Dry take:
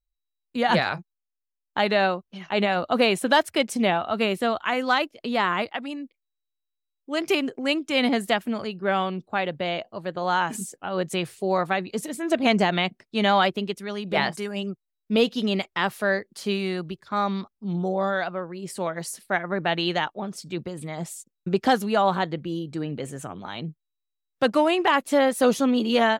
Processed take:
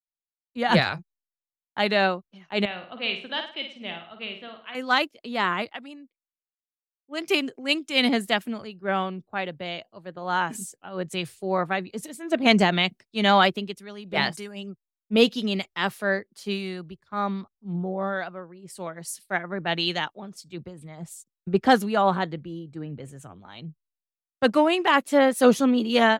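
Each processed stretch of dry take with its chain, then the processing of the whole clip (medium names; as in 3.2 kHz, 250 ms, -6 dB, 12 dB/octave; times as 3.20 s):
2.65–4.75 s: four-pole ladder low-pass 3.7 kHz, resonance 50% + flutter echo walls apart 9.2 m, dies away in 0.53 s
whole clip: dynamic bell 720 Hz, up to -3 dB, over -32 dBFS, Q 0.75; three bands expanded up and down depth 100%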